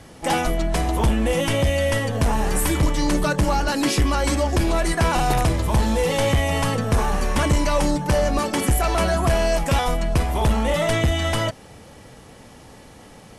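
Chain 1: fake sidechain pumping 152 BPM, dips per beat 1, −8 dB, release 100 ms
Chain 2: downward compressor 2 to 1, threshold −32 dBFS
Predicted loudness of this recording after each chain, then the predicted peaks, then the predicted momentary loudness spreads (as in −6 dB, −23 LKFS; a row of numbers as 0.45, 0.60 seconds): −21.5, −29.5 LKFS; −11.5, −18.0 dBFS; 2, 16 LU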